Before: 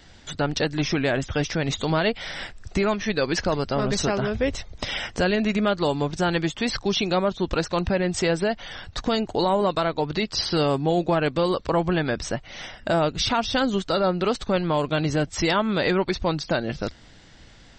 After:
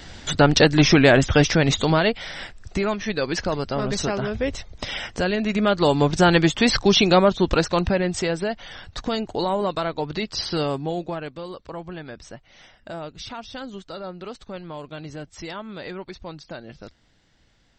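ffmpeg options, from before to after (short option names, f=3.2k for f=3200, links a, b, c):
-af "volume=17dB,afade=t=out:st=1.27:d=1.02:silence=0.316228,afade=t=in:st=5.46:d=0.66:silence=0.398107,afade=t=out:st=7.13:d=1.16:silence=0.354813,afade=t=out:st=10.58:d=0.77:silence=0.298538"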